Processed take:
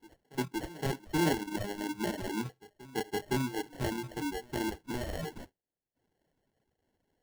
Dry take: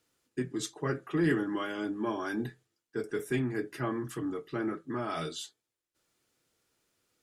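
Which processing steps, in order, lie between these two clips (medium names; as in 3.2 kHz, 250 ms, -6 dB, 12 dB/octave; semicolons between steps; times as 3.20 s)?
sample-and-hold 36×; reverb removal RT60 0.79 s; reverse echo 515 ms -20.5 dB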